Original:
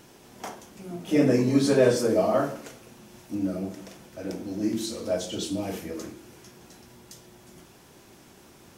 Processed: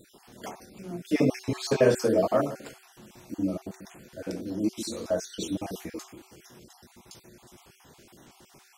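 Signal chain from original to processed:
time-frequency cells dropped at random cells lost 36%
hum removal 380.1 Hz, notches 2

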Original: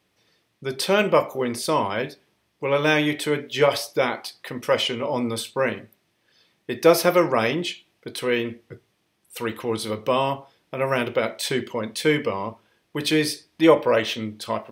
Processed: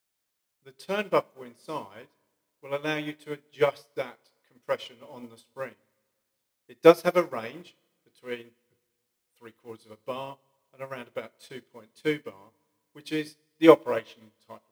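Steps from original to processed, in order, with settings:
in parallel at −10.5 dB: bit-depth reduction 6 bits, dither triangular
on the sum: convolution reverb RT60 1.9 s, pre-delay 8 ms, DRR 12 dB
expander for the loud parts 2.5 to 1, over −30 dBFS
level −1 dB

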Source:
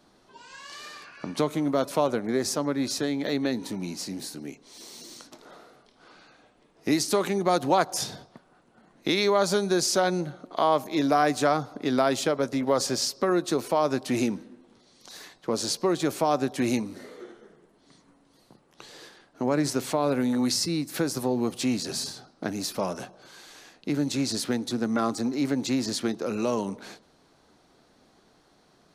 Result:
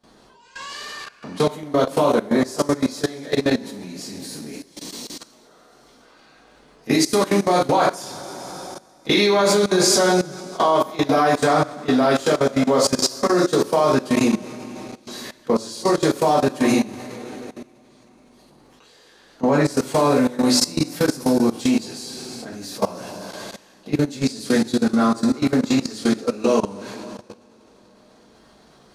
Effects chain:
coupled-rooms reverb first 0.38 s, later 3.5 s, from −17 dB, DRR −9 dB
output level in coarse steps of 18 dB
level +2 dB

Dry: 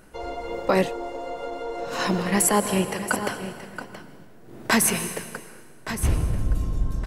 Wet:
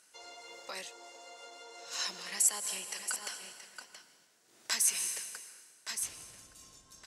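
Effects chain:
downward compressor 2.5 to 1, threshold −23 dBFS, peak gain reduction 6 dB
resonant band-pass 6,500 Hz, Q 1.4
level +3 dB

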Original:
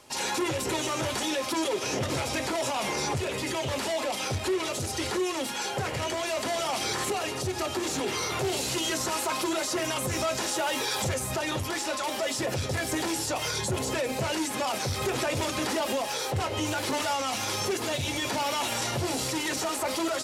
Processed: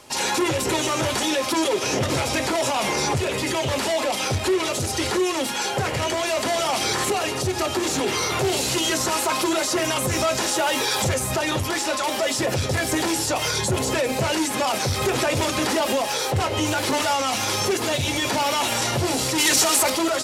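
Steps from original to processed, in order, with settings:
0:19.38–0:19.90: high-shelf EQ 2,500 Hz +10 dB
level +6.5 dB

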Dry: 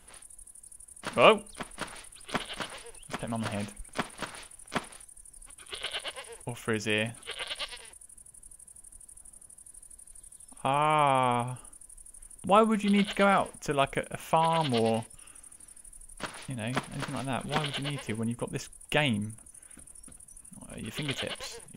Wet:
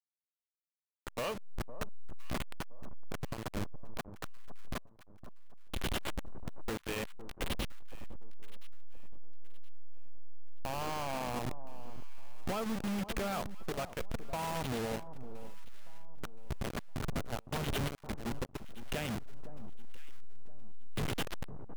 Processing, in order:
hold until the input has moved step −25 dBFS
downward compressor 6 to 1, threshold −37 dBFS, peak gain reduction 21.5 dB
hard clipping −39 dBFS, distortion −13 dB
delay that swaps between a low-pass and a high-pass 510 ms, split 1,100 Hz, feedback 54%, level −13 dB
level +6.5 dB

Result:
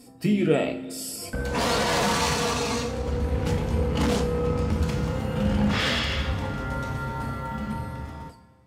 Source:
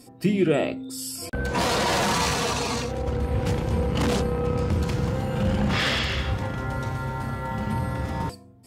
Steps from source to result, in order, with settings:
fade-out on the ending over 1.39 s
coupled-rooms reverb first 0.34 s, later 2.8 s, from −18 dB, DRR 4.5 dB
level −2 dB

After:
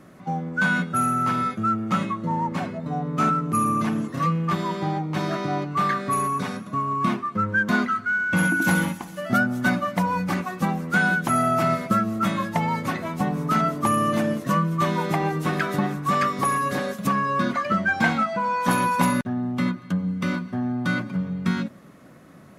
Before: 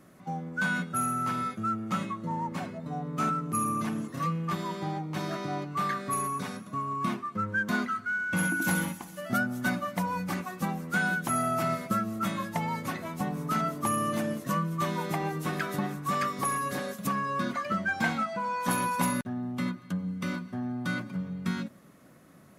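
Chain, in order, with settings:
high-shelf EQ 6,700 Hz −9 dB
level +7.5 dB

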